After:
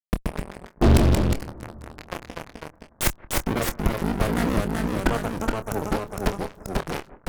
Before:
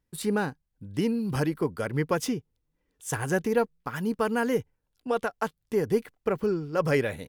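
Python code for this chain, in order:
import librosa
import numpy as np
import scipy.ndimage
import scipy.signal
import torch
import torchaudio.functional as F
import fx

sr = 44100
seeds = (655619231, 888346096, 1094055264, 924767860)

p1 = fx.octave_divider(x, sr, octaves=2, level_db=-1.0)
p2 = fx.gate_flip(p1, sr, shuts_db=-30.0, range_db=-30)
p3 = fx.bass_treble(p2, sr, bass_db=11, treble_db=6, at=(3.45, 5.37), fade=0.02)
p4 = fx.cheby_harmonics(p3, sr, harmonics=(3, 5, 7, 8), levels_db=(-40, -32, -25, -6), full_scale_db=-24.0)
p5 = fx.backlash(p4, sr, play_db=-32.0)
p6 = p4 + F.gain(torch.from_numpy(p5), -5.5).numpy()
p7 = fx.spec_erase(p6, sr, start_s=4.75, length_s=1.07, low_hz=1500.0, high_hz=5700.0)
p8 = fx.fuzz(p7, sr, gain_db=41.0, gate_db=-46.0)
p9 = fx.echo_bbd(p8, sr, ms=172, stages=2048, feedback_pct=72, wet_db=-21.5)
p10 = fx.echo_pitch(p9, sr, ms=120, semitones=-1, count=2, db_per_echo=-3.0)
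y = fx.doubler(p10, sr, ms=26.0, db=-10.0)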